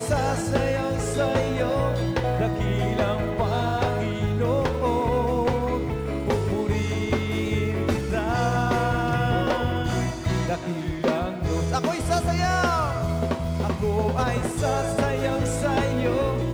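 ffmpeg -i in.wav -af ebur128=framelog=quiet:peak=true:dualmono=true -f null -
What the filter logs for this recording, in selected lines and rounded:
Integrated loudness:
  I:         -21.5 LUFS
  Threshold: -31.5 LUFS
Loudness range:
  LRA:         0.9 LU
  Threshold: -41.6 LUFS
  LRA low:   -22.1 LUFS
  LRA high:  -21.2 LUFS
True peak:
  Peak:      -13.3 dBFS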